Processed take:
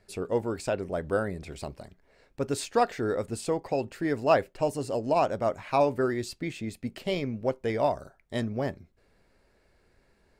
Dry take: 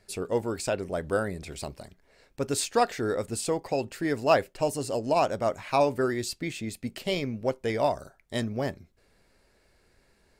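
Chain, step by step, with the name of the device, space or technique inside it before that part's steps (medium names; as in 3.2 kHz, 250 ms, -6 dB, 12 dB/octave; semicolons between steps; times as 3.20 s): behind a face mask (treble shelf 3.3 kHz -8 dB)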